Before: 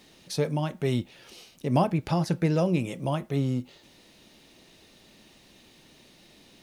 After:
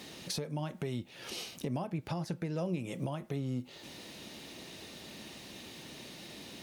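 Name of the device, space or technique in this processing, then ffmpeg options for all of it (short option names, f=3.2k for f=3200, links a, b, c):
podcast mastering chain: -af "highpass=69,deesser=0.8,acompressor=threshold=-40dB:ratio=4,alimiter=level_in=8.5dB:limit=-24dB:level=0:latency=1:release=412,volume=-8.5dB,volume=8dB" -ar 44100 -c:a libmp3lame -b:a 96k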